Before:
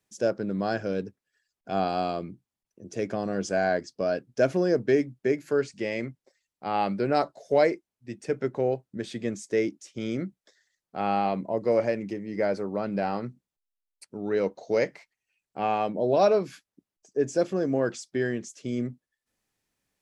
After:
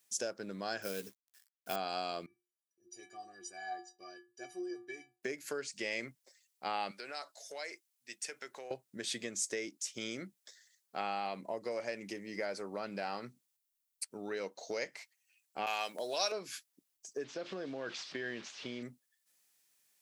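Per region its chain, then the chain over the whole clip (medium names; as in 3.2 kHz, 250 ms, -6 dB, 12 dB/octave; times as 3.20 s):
0.82–1.76 s: companded quantiser 6-bit + doubling 15 ms -8.5 dB
2.26–5.23 s: peaking EQ 72 Hz +10.5 dB 2.7 oct + inharmonic resonator 350 Hz, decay 0.39 s, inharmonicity 0.03
6.91–8.71 s: high-pass 1.3 kHz 6 dB/octave + compression 4:1, threshold -38 dBFS
15.66–16.32 s: gate with hold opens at -23 dBFS, closes at -28 dBFS + tilt EQ +4 dB/octave
17.24–18.83 s: one-bit delta coder 64 kbps, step -41.5 dBFS + low-pass 4.1 kHz 24 dB/octave + compression, threshold -26 dBFS
whole clip: compression 5:1, threshold -30 dBFS; tilt EQ +4 dB/octave; trim -2 dB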